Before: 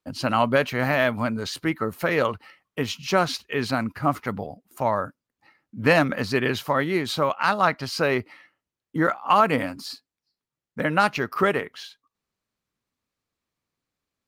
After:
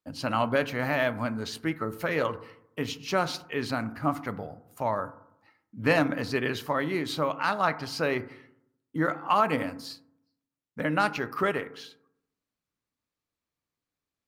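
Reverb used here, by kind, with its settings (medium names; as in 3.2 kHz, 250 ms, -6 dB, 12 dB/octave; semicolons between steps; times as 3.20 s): FDN reverb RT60 0.77 s, low-frequency decay 1.2×, high-frequency decay 0.3×, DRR 11.5 dB; trim -5.5 dB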